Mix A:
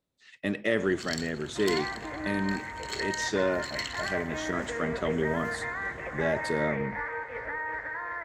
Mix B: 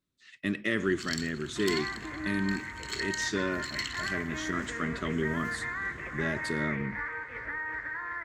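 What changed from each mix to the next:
master: add band shelf 640 Hz -10.5 dB 1.2 oct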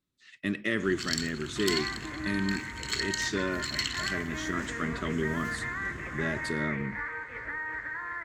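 first sound +5.0 dB

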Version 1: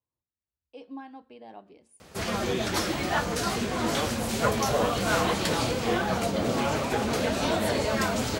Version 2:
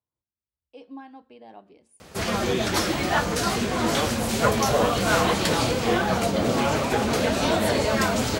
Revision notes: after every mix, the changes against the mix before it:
background +4.0 dB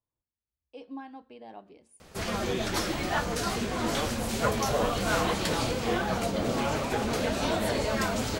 background -6.0 dB; master: remove HPF 61 Hz

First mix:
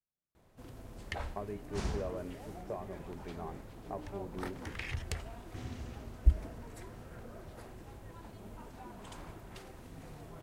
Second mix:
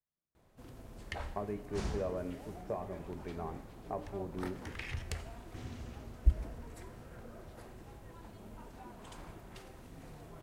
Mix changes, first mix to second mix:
background -4.5 dB; reverb: on, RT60 1.1 s

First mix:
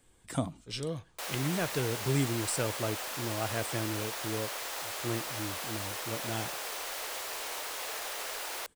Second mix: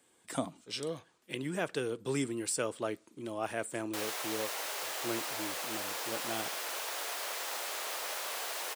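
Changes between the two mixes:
background: entry +2.75 s; master: add HPF 250 Hz 12 dB/oct

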